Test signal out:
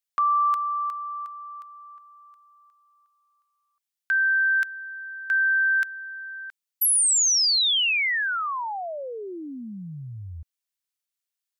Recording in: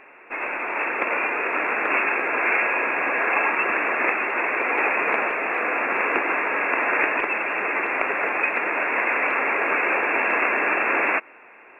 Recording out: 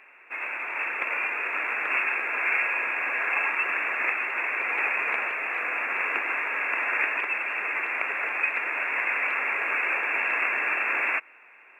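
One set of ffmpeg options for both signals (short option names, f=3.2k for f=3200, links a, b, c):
-af "tiltshelf=f=1.1k:g=-8.5,volume=-7.5dB"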